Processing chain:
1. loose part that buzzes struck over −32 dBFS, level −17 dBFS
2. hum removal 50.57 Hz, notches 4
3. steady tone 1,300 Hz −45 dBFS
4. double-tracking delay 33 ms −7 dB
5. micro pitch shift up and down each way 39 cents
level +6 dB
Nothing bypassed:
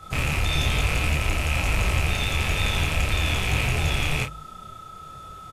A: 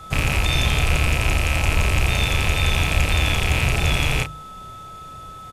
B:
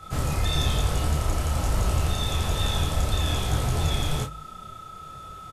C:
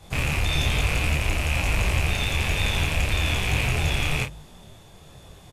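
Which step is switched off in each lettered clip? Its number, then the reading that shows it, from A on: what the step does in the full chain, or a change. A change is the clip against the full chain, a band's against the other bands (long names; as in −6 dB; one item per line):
5, change in integrated loudness +4.0 LU
1, 2 kHz band −11.0 dB
3, 1 kHz band −1.5 dB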